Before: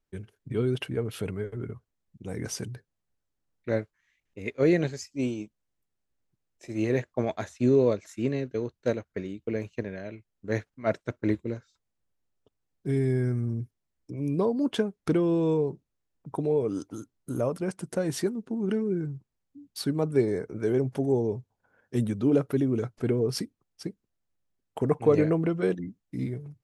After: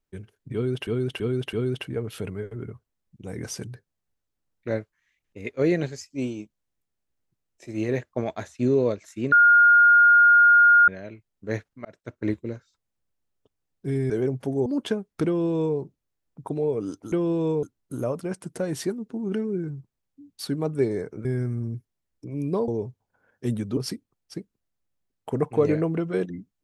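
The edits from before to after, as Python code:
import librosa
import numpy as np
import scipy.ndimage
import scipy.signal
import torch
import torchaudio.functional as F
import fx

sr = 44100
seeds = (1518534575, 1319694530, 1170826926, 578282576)

y = fx.edit(x, sr, fx.repeat(start_s=0.54, length_s=0.33, count=4),
    fx.bleep(start_s=8.33, length_s=1.56, hz=1420.0, db=-11.5),
    fx.fade_in_span(start_s=10.86, length_s=0.43),
    fx.swap(start_s=13.11, length_s=1.43, other_s=20.62, other_length_s=0.56),
    fx.duplicate(start_s=15.14, length_s=0.51, to_s=17.0),
    fx.cut(start_s=22.27, length_s=0.99), tone=tone)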